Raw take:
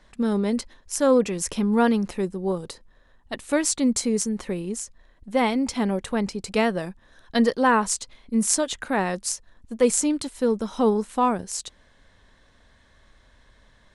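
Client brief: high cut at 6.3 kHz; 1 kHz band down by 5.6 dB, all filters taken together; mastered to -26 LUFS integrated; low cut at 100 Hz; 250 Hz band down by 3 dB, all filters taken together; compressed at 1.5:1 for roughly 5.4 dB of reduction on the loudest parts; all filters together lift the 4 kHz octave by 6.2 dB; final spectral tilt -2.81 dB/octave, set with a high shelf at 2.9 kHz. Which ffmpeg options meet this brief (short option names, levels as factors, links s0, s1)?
-af "highpass=100,lowpass=6300,equalizer=f=250:t=o:g=-3,equalizer=f=1000:t=o:g=-8,highshelf=f=2900:g=7,equalizer=f=4000:t=o:g=3.5,acompressor=threshold=0.0282:ratio=1.5,volume=1.5"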